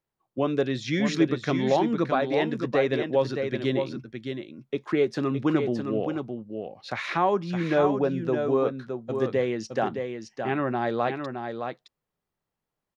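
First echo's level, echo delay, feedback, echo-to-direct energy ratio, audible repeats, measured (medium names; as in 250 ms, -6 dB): -6.5 dB, 616 ms, no regular repeats, -6.5 dB, 1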